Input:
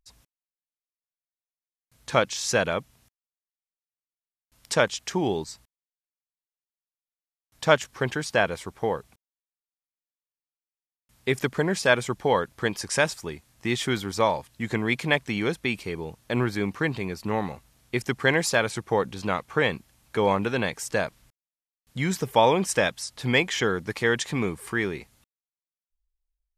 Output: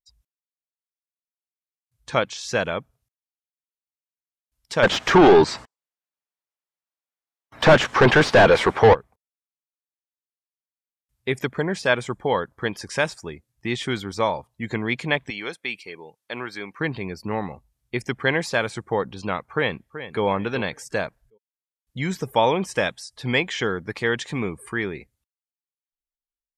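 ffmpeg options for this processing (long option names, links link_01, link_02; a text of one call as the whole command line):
ffmpeg -i in.wav -filter_complex "[0:a]asplit=3[link_01][link_02][link_03];[link_01]afade=type=out:start_time=4.82:duration=0.02[link_04];[link_02]asplit=2[link_05][link_06];[link_06]highpass=frequency=720:poles=1,volume=37dB,asoftclip=type=tanh:threshold=-2.5dB[link_07];[link_05][link_07]amix=inputs=2:normalize=0,lowpass=frequency=1100:poles=1,volume=-6dB,afade=type=in:start_time=4.82:duration=0.02,afade=type=out:start_time=8.93:duration=0.02[link_08];[link_03]afade=type=in:start_time=8.93:duration=0.02[link_09];[link_04][link_08][link_09]amix=inputs=3:normalize=0,asettb=1/sr,asplit=3[link_10][link_11][link_12];[link_10]atrim=end=15.304[link_13];[link_11]atrim=start=15.3:end=16.79,asetpts=PTS-STARTPTS,afade=type=in:duration=0.004:curve=qsin,afade=type=out:start_time=1.486:duration=0.004:curve=qsin,highpass=frequency=860:poles=1[link_14];[link_12]atrim=start=16.786[link_15];[link_13][link_14]acrossfade=duration=0.004:curve1=hsin:curve2=qsin[link_16];[link_16][link_15]acrossfade=duration=0.004:curve1=qsin:curve2=hsin,asplit=2[link_17][link_18];[link_18]afade=type=in:start_time=19.52:duration=0.01,afade=type=out:start_time=20.23:duration=0.01,aecho=0:1:380|760|1140:0.251189|0.0753566|0.022607[link_19];[link_17][link_19]amix=inputs=2:normalize=0,afftdn=noise_reduction=22:noise_floor=-46,acrossover=split=4700[link_20][link_21];[link_21]acompressor=threshold=-44dB:ratio=4:attack=1:release=60[link_22];[link_20][link_22]amix=inputs=2:normalize=0,highshelf=frequency=7300:gain=6" out.wav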